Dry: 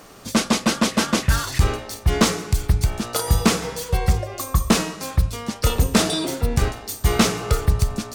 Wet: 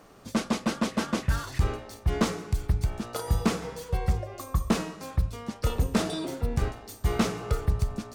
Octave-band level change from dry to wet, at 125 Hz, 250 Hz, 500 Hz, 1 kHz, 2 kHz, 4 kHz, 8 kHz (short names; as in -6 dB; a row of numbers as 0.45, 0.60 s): -7.0, -7.0, -7.5, -8.5, -10.0, -13.0, -14.5 dB